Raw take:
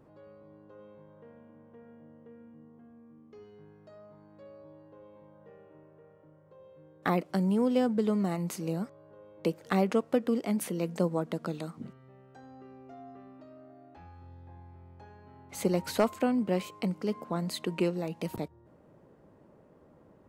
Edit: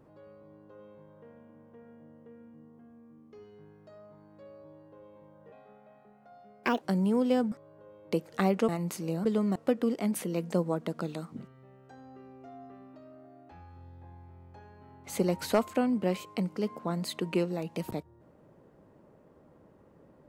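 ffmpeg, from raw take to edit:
-filter_complex "[0:a]asplit=7[a][b][c][d][e][f][g];[a]atrim=end=5.524[h];[b]atrim=start=5.52:end=7.27,asetpts=PTS-STARTPTS,asetrate=59535,aresample=44100[i];[c]atrim=start=7.266:end=7.972[j];[d]atrim=start=8.838:end=10.012[k];[e]atrim=start=8.278:end=8.842[l];[f]atrim=start=7.968:end=8.282[m];[g]atrim=start=10.008[n];[h][i]acrossfade=d=0.004:c1=hsin:c2=hsin[o];[o][j]acrossfade=d=0.004:c1=hsin:c2=hsin[p];[p][k]acrossfade=d=0.004:c1=hsin:c2=hsin[q];[q][l]acrossfade=d=0.004:c1=hsin:c2=hsin[r];[r][m]acrossfade=d=0.004:c1=hsin:c2=hsin[s];[s][n]acrossfade=d=0.004:c1=hsin:c2=hsin"

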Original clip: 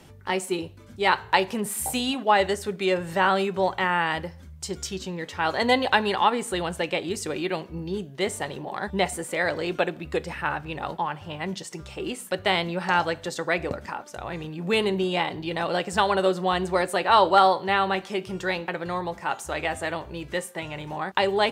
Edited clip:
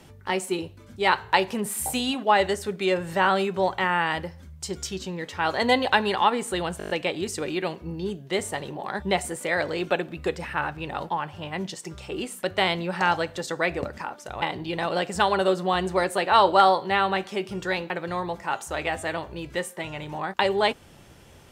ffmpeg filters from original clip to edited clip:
-filter_complex "[0:a]asplit=8[a][b][c][d][e][f][g][h];[a]atrim=end=6.802[i];[b]atrim=start=6.778:end=6.802[j];[c]atrim=start=6.778:end=6.802[k];[d]atrim=start=6.778:end=6.802[l];[e]atrim=start=6.778:end=6.802[m];[f]atrim=start=6.778:end=6.802[n];[g]atrim=start=6.778:end=14.302[o];[h]atrim=start=15.198[p];[i][j]acrossfade=d=0.004:c1=hsin:c2=hsin[q];[q][k]acrossfade=d=0.004:c1=hsin:c2=hsin[r];[r][l]acrossfade=d=0.004:c1=hsin:c2=hsin[s];[s][m]acrossfade=d=0.004:c1=hsin:c2=hsin[t];[t][n]acrossfade=d=0.004:c1=hsin:c2=hsin[u];[u][o]acrossfade=d=0.004:c1=hsin:c2=hsin[v];[v][p]acrossfade=d=0.004:c1=hsin:c2=hsin"

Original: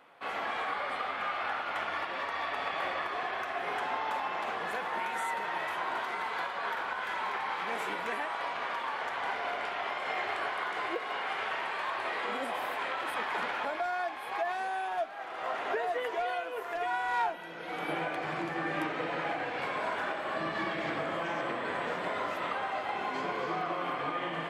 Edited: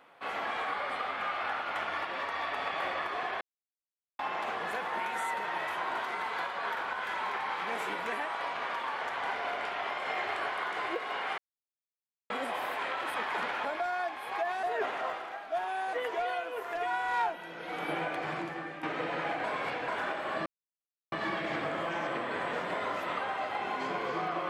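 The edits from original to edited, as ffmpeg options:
-filter_complex "[0:a]asplit=11[a][b][c][d][e][f][g][h][i][j][k];[a]atrim=end=3.41,asetpts=PTS-STARTPTS,afade=t=out:st=3.406:d=0.004:c=hsin[l];[b]atrim=start=3.41:end=4.19,asetpts=PTS-STARTPTS,volume=0[m];[c]atrim=start=4.19:end=11.38,asetpts=PTS-STARTPTS,afade=t=in:d=0.004:c=hsin,afade=t=out:st=7.186:d=0.004:c=hsin[n];[d]atrim=start=11.38:end=12.3,asetpts=PTS-STARTPTS,volume=0[o];[e]atrim=start=12.3:end=14.632,asetpts=PTS-STARTPTS,afade=t=in:d=0.004:c=hsin[p];[f]atrim=start=14.628:end=15.932,asetpts=PTS-STARTPTS,areverse[q];[g]atrim=start=15.928:end=18.83,asetpts=PTS-STARTPTS,afade=t=out:st=2.372:d=0.53:silence=0.211349[r];[h]atrim=start=18.83:end=19.442,asetpts=PTS-STARTPTS,afade=t=in:d=0.004:c=hsin:silence=0.211349[s];[i]atrim=start=19.438:end=19.882,asetpts=PTS-STARTPTS,areverse[t];[j]atrim=start=19.878:end=20.46,asetpts=PTS-STARTPTS,afade=t=out:st=0.578:d=0.004:c=hsin,apad=pad_dur=0.66[u];[k]atrim=start=20.46,asetpts=PTS-STARTPTS,afade=t=in:d=0.004:c=hsin[v];[l][m][n][o][p]concat=n=5:v=0:a=1[w];[w][q]acrossfade=d=0.004:c1=hsin:c2=hsin[x];[r][s]concat=n=2:v=0:a=1[y];[x][y]acrossfade=d=0.004:c1=hsin:c2=hsin[z];[z][t]acrossfade=d=0.004:c1=hsin:c2=hsin[aa];[u][v]concat=n=2:v=0:a=1[ab];[aa][ab]acrossfade=d=0.004:c1=hsin:c2=hsin"

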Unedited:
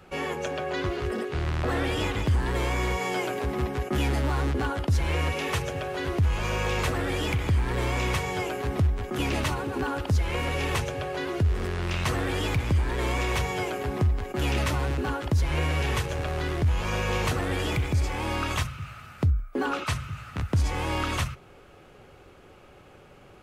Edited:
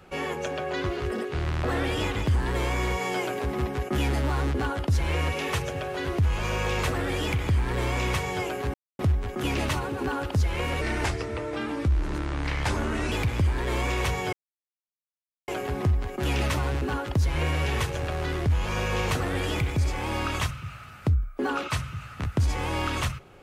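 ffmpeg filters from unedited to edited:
-filter_complex "[0:a]asplit=5[a][b][c][d][e];[a]atrim=end=8.74,asetpts=PTS-STARTPTS,afade=t=out:st=8.736:d=0.004:c=hsin,apad=pad_dur=0.25[f];[b]atrim=start=8.74:end=10.564,asetpts=PTS-STARTPTS,afade=t=in:d=0.004:c=hsin[g];[c]atrim=start=10.56:end=12.43,asetpts=PTS-STARTPTS,asetrate=35721,aresample=44100,atrim=end_sample=101811,asetpts=PTS-STARTPTS[h];[d]atrim=start=12.426:end=13.64,asetpts=PTS-STARTPTS,afade=t=out:st=1.21:d=0.004:c=hsin,apad=pad_dur=1.15[i];[e]atrim=start=13.64,asetpts=PTS-STARTPTS,afade=t=in:d=0.004:c=hsin[j];[f][g]concat=n=2:v=0:a=1[k];[k][h]acrossfade=d=0.004:c1=hsin:c2=hsin[l];[i][j]concat=n=2:v=0:a=1[m];[l][m]acrossfade=d=0.004:c1=hsin:c2=hsin"

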